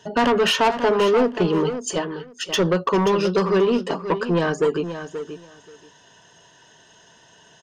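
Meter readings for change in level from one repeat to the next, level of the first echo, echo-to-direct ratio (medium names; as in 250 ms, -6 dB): -16.0 dB, -10.5 dB, -10.5 dB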